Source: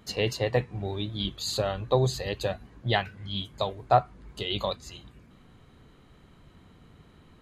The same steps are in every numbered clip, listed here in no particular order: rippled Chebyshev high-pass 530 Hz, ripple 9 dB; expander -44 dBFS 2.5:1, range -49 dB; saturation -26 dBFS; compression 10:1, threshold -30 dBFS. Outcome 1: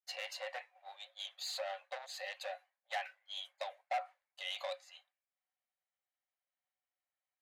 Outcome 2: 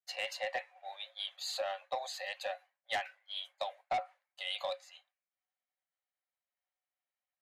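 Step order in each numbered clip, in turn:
saturation > compression > rippled Chebyshev high-pass > expander; rippled Chebyshev high-pass > saturation > expander > compression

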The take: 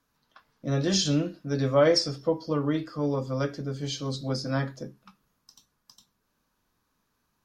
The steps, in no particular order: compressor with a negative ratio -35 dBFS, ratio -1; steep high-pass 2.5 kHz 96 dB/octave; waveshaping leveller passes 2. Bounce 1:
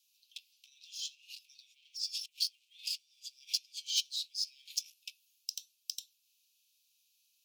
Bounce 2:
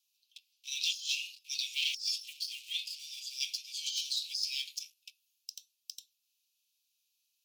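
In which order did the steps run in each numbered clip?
waveshaping leveller > compressor with a negative ratio > steep high-pass; waveshaping leveller > steep high-pass > compressor with a negative ratio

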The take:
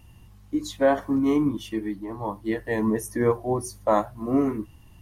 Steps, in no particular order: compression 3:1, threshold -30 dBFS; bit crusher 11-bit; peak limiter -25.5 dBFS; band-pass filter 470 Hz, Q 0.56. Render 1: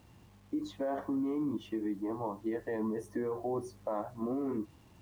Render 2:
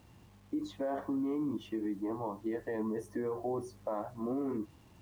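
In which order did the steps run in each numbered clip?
band-pass filter > peak limiter > compression > bit crusher; peak limiter > band-pass filter > compression > bit crusher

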